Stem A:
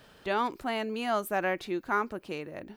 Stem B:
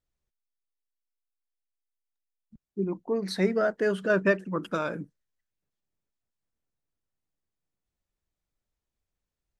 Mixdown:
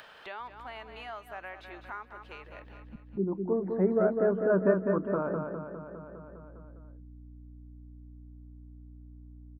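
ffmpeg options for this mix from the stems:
-filter_complex "[0:a]acrossover=split=580 3700:gain=0.126 1 0.178[a][b][c];[a][b][c]amix=inputs=3:normalize=0,volume=-13dB,asplit=2[d][e];[e]volume=-12dB[f];[1:a]agate=range=-7dB:threshold=-51dB:ratio=16:detection=peak,lowpass=f=1.2k:w=0.5412,lowpass=f=1.2k:w=1.3066,aeval=exprs='val(0)+0.001*(sin(2*PI*60*n/s)+sin(2*PI*2*60*n/s)/2+sin(2*PI*3*60*n/s)/3+sin(2*PI*4*60*n/s)/4+sin(2*PI*5*60*n/s)/5)':c=same,adelay=400,volume=-1dB,asplit=2[g][h];[h]volume=-5dB[i];[f][i]amix=inputs=2:normalize=0,aecho=0:1:203|406|609|812|1015|1218|1421|1624:1|0.53|0.281|0.149|0.0789|0.0418|0.0222|0.0117[j];[d][g][j]amix=inputs=3:normalize=0,acompressor=mode=upward:threshold=-35dB:ratio=2.5"

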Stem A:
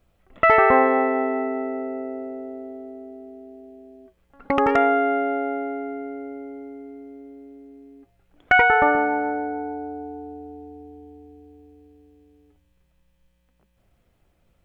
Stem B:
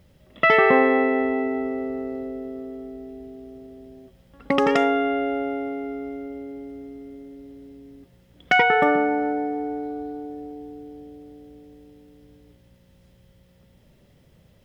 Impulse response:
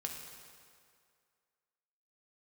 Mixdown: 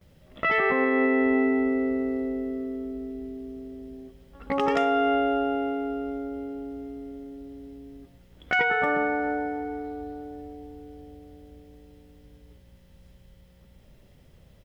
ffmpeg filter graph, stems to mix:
-filter_complex "[0:a]acompressor=threshold=-22dB:ratio=6,volume=-6.5dB[a];[1:a]asubboost=boost=2:cutoff=83,alimiter=limit=-14.5dB:level=0:latency=1:release=286,volume=-1,adelay=13,volume=-2.5dB,asplit=2[b][c];[c]volume=-8dB[d];[2:a]atrim=start_sample=2205[e];[d][e]afir=irnorm=-1:irlink=0[f];[a][b][f]amix=inputs=3:normalize=0"

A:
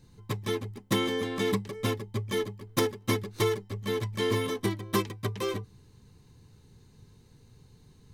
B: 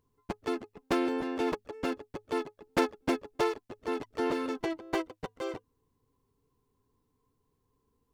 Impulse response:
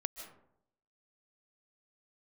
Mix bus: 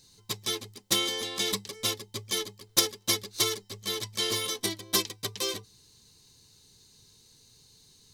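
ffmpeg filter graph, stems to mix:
-filter_complex "[0:a]bass=f=250:g=-6,treble=f=4k:g=14,volume=-5.5dB[a];[1:a]volume=-12.5dB[b];[a][b]amix=inputs=2:normalize=0,equalizer=f=4.2k:w=0.88:g=10"

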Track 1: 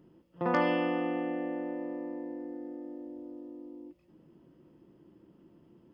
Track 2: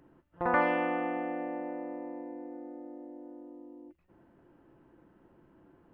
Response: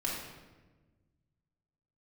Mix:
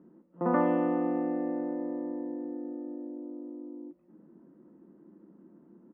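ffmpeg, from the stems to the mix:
-filter_complex "[0:a]volume=0dB[a];[1:a]highpass=f=1.1k:w=0.5412,highpass=f=1.1k:w=1.3066,adelay=0.5,volume=-12dB[b];[a][b]amix=inputs=2:normalize=0,lowpass=f=1.7k:w=0.5412,lowpass=f=1.7k:w=1.3066,lowshelf=f=150:t=q:w=3:g=-10.5"

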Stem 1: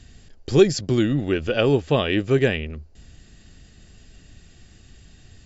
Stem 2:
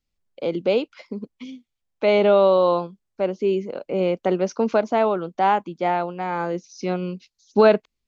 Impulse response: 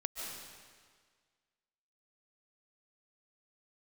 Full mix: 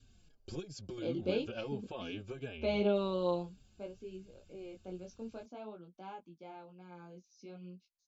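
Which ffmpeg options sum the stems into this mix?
-filter_complex "[0:a]acompressor=threshold=-21dB:ratio=12,asplit=2[a][b];[b]adelay=4.5,afreqshift=-2.8[c];[a][c]amix=inputs=2:normalize=1,volume=-13dB[d];[1:a]equalizer=f=1k:w=0.58:g=-11.5,flanger=delay=16.5:depth=6.2:speed=0.55,adelay=600,volume=-5.5dB,afade=t=out:st=3.29:d=0.75:silence=0.251189[e];[d][e]amix=inputs=2:normalize=0,adynamicequalizer=threshold=0.00126:dfrequency=880:dqfactor=6.1:tfrequency=880:tqfactor=6.1:attack=5:release=100:ratio=0.375:range=2.5:mode=boostabove:tftype=bell,asuperstop=centerf=1900:order=8:qfactor=5"

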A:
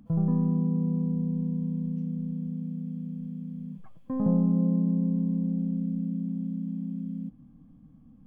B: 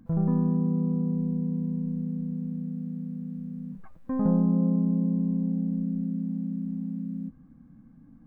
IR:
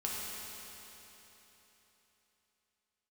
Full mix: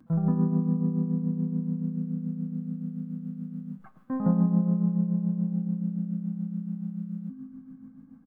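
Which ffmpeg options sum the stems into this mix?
-filter_complex "[0:a]volume=-8.5dB[a];[1:a]highpass=f=130:w=0.5412,highpass=f=130:w=1.3066,equalizer=f=1.3k:t=o:w=0.6:g=6,adelay=4.5,volume=-3dB,asplit=2[b][c];[c]volume=-6.5dB[d];[2:a]atrim=start_sample=2205[e];[d][e]afir=irnorm=-1:irlink=0[f];[a][b][f]amix=inputs=3:normalize=0,tremolo=f=7:d=0.52"

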